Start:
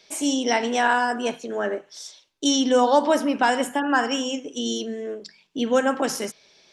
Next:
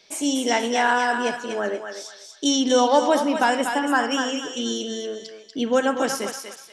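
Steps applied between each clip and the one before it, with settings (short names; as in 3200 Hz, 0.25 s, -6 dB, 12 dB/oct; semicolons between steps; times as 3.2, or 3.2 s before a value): thinning echo 0.241 s, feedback 33%, high-pass 750 Hz, level -5 dB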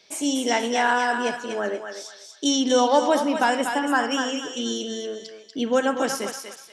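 HPF 47 Hz; gain -1 dB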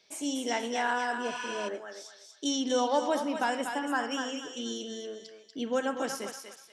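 spectral repair 1.29–1.66, 780–10000 Hz before; gain -8.5 dB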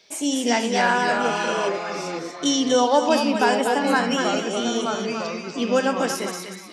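echoes that change speed 0.186 s, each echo -3 st, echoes 2, each echo -6 dB; gain +9 dB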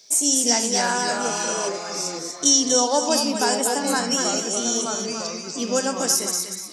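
resonant high shelf 4300 Hz +13.5 dB, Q 1.5; gain -3 dB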